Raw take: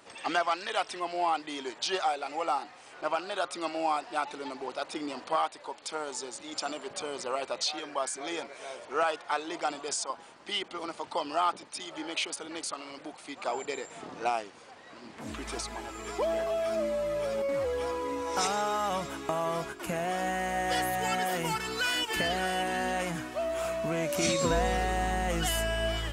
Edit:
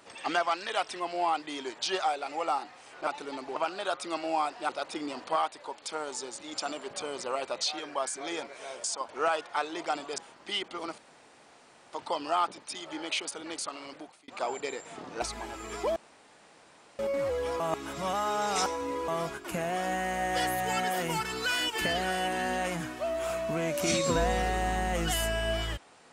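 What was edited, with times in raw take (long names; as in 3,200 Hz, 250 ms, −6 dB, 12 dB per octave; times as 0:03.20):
0:04.20–0:04.69: move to 0:03.07
0:09.93–0:10.18: move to 0:08.84
0:10.98: splice in room tone 0.95 s
0:12.97–0:13.33: fade out
0:14.27–0:15.57: remove
0:16.31–0:17.34: fill with room tone
0:17.95–0:19.43: reverse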